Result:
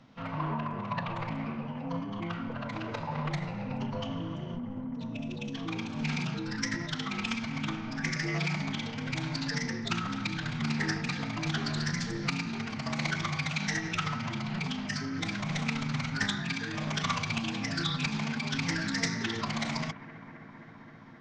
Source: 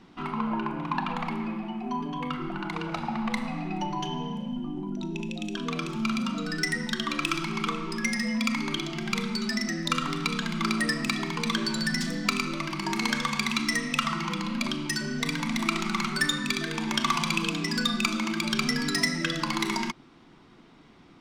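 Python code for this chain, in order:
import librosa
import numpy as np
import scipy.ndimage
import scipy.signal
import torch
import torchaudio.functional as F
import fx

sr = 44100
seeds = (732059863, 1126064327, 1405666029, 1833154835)

y = scipy.signal.sosfilt(scipy.signal.cheby1(3, 1.0, 7100.0, 'lowpass', fs=sr, output='sos'), x)
y = fx.pitch_keep_formants(y, sr, semitones=-6.5)
y = fx.echo_bbd(y, sr, ms=264, stages=4096, feedback_pct=84, wet_db=-17)
y = fx.doppler_dist(y, sr, depth_ms=0.18)
y = y * librosa.db_to_amplitude(-3.0)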